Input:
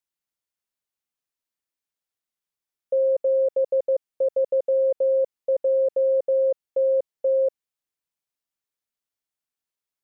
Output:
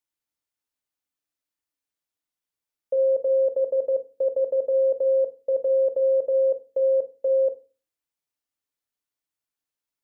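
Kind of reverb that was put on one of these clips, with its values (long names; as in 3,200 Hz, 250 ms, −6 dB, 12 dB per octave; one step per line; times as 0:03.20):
feedback delay network reverb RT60 0.33 s, low-frequency decay 1.5×, high-frequency decay 0.55×, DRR 7 dB
level −1 dB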